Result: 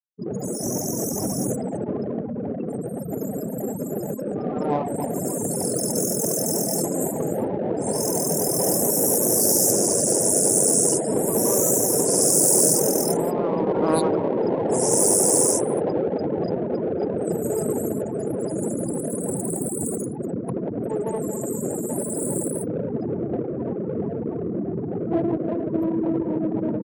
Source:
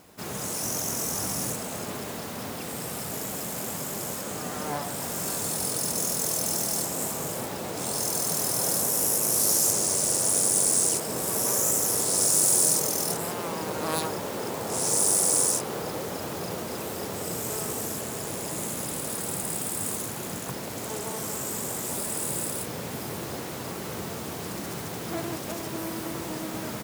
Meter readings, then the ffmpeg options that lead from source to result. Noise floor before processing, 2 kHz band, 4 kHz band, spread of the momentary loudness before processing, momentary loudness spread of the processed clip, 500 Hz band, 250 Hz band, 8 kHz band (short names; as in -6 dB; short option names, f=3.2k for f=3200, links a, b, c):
-35 dBFS, -7.0 dB, -2.5 dB, 14 LU, 12 LU, +10.5 dB, +11.0 dB, +2.5 dB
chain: -filter_complex "[0:a]highshelf=f=6.4k:g=4.5,asplit=2[a][b];[b]adelay=291.5,volume=-9dB,highshelf=f=4k:g=-6.56[c];[a][c]amix=inputs=2:normalize=0,afftfilt=real='re*gte(hypot(re,im),0.0501)':imag='im*gte(hypot(re,im),0.0501)':win_size=1024:overlap=0.75,equalizer=f=350:w=0.41:g=12.5,acrossover=split=140|1500[d][e][f];[e]adynamicsmooth=sensitivity=1.5:basefreq=880[g];[d][g][f]amix=inputs=3:normalize=0"